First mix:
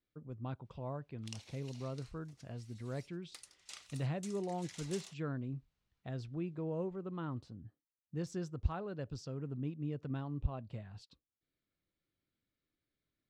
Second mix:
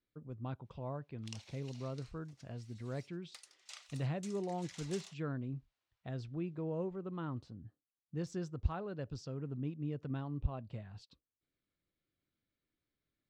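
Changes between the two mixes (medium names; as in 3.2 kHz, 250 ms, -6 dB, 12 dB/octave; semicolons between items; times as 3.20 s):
background: add steep high-pass 500 Hz; master: add peaking EQ 11 kHz -6.5 dB 0.71 oct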